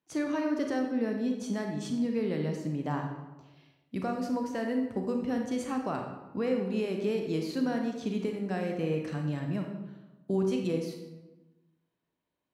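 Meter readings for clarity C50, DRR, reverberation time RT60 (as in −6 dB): 4.0 dB, 2.5 dB, 1.1 s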